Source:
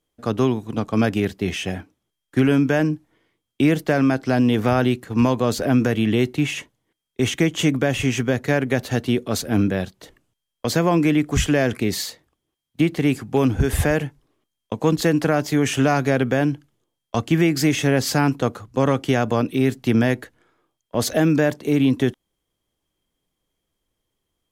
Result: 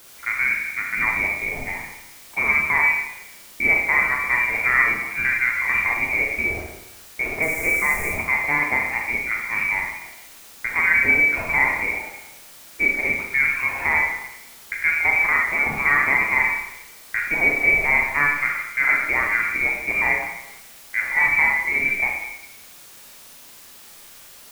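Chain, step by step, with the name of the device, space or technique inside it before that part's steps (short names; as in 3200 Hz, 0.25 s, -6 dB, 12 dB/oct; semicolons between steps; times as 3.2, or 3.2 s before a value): scrambled radio voice (BPF 370–3200 Hz; inverted band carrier 2600 Hz; white noise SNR 22 dB); 7.42–8.1 resonant high shelf 5600 Hz +10 dB, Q 1.5; Schroeder reverb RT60 0.91 s, combs from 27 ms, DRR -0.5 dB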